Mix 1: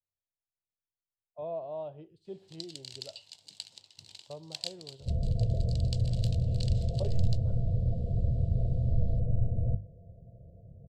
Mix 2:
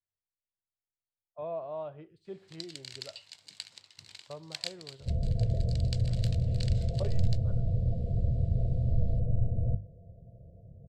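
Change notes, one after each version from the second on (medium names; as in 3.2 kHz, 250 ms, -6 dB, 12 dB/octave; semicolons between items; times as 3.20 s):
master: add high-order bell 1.6 kHz +10.5 dB 1.3 oct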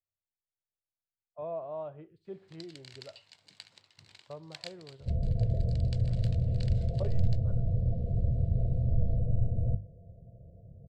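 master: add treble shelf 3.1 kHz -11.5 dB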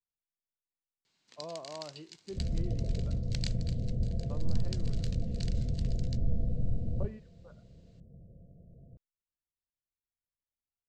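first sound: entry -1.20 s; second sound: entry -2.70 s; master: add fifteen-band graphic EQ 100 Hz -10 dB, 250 Hz +6 dB, 630 Hz -7 dB, 6.3 kHz +11 dB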